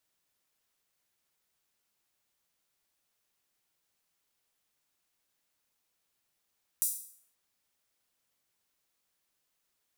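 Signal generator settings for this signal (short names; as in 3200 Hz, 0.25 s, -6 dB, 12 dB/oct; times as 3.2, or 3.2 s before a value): open hi-hat length 0.53 s, high-pass 8600 Hz, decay 0.57 s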